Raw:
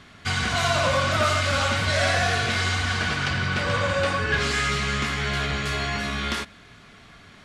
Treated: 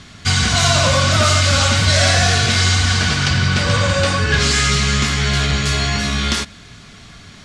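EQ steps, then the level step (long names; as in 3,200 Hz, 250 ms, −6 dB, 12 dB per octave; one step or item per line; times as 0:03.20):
low-pass filter 7,100 Hz 12 dB per octave
bass and treble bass +7 dB, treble +14 dB
+4.5 dB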